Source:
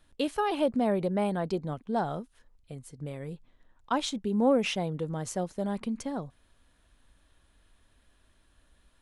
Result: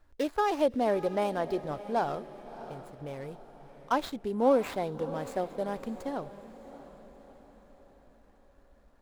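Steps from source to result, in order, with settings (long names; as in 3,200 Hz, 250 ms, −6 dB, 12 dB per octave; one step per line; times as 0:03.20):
running median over 15 samples
parametric band 180 Hz −11 dB 1.1 octaves
feedback delay with all-pass diffusion 654 ms, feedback 49%, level −14.5 dB
level +2.5 dB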